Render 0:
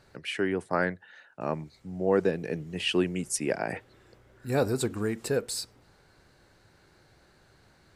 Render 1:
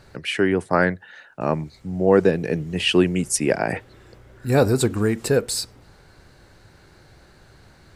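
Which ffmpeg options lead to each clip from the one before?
-af "lowshelf=f=110:g=6.5,volume=2.51"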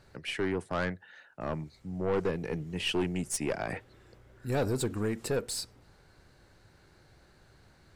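-af "aeval=exprs='(tanh(5.62*val(0)+0.3)-tanh(0.3))/5.62':c=same,volume=0.376"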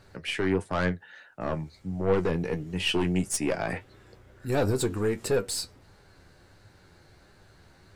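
-af "flanger=delay=9.5:depth=2.6:regen=49:speed=1.5:shape=triangular,volume=2.51"

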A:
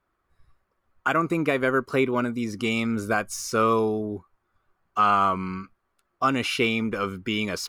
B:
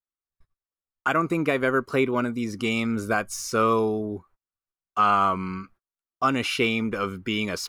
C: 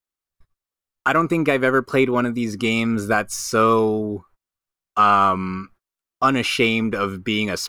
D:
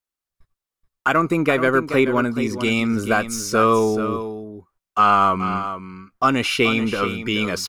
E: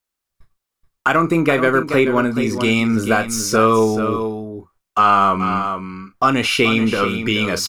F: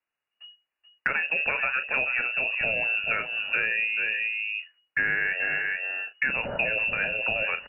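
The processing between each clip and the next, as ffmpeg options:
-af "agate=range=0.0316:threshold=0.00251:ratio=16:detection=peak"
-af "aeval=exprs='0.335*(cos(1*acos(clip(val(0)/0.335,-1,1)))-cos(1*PI/2))+0.00237*(cos(8*acos(clip(val(0)/0.335,-1,1)))-cos(8*PI/2))':c=same,volume=1.78"
-af "aecho=1:1:430:0.299"
-filter_complex "[0:a]asplit=2[s0][s1];[s1]acompressor=threshold=0.0631:ratio=6,volume=1.26[s2];[s0][s2]amix=inputs=2:normalize=0,asplit=2[s3][s4];[s4]adelay=36,volume=0.282[s5];[s3][s5]amix=inputs=2:normalize=0,volume=0.891"
-filter_complex "[0:a]lowpass=f=2500:t=q:w=0.5098,lowpass=f=2500:t=q:w=0.6013,lowpass=f=2500:t=q:w=0.9,lowpass=f=2500:t=q:w=2.563,afreqshift=-2900,acrossover=split=200|610[s0][s1][s2];[s0]acompressor=threshold=0.00708:ratio=4[s3];[s1]acompressor=threshold=0.0112:ratio=4[s4];[s2]acompressor=threshold=0.0501:ratio=4[s5];[s3][s4][s5]amix=inputs=3:normalize=0"

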